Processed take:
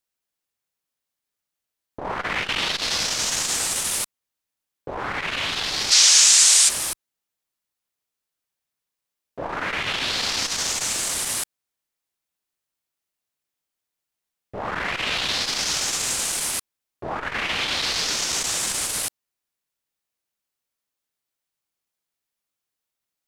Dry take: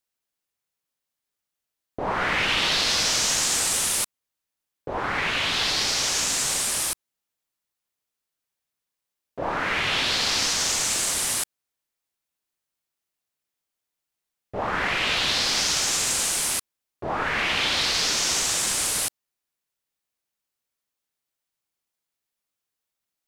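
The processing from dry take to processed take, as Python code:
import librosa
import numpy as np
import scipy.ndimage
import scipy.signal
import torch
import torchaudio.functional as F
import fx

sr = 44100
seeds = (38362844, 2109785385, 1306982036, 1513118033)

y = fx.weighting(x, sr, curve='ITU-R 468', at=(5.9, 6.68), fade=0.02)
y = fx.transformer_sat(y, sr, knee_hz=1800.0)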